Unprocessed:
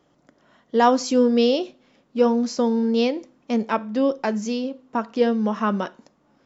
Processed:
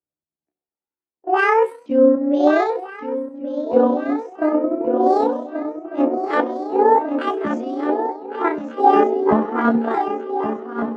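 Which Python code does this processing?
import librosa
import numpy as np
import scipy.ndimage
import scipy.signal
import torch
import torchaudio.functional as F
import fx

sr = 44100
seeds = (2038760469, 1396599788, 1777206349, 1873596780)

p1 = fx.pitch_ramps(x, sr, semitones=11.5, every_ms=1096)
p2 = fx.level_steps(p1, sr, step_db=11)
p3 = p1 + F.gain(torch.from_numpy(p2), 0.5).numpy()
p4 = scipy.signal.sosfilt(scipy.signal.butter(2, 87.0, 'highpass', fs=sr, output='sos'), p3)
p5 = fx.tilt_eq(p4, sr, slope=-4.0)
p6 = p5 + fx.echo_swing(p5, sr, ms=883, ratio=3, feedback_pct=49, wet_db=-6, dry=0)
p7 = fx.rider(p6, sr, range_db=10, speed_s=2.0)
p8 = fx.stretch_grains(p7, sr, factor=1.7, grain_ms=65.0)
p9 = fx.env_lowpass(p8, sr, base_hz=2200.0, full_db=-9.5)
p10 = fx.bass_treble(p9, sr, bass_db=-12, treble_db=-12)
p11 = fx.band_widen(p10, sr, depth_pct=100)
y = F.gain(torch.from_numpy(p11), -2.5).numpy()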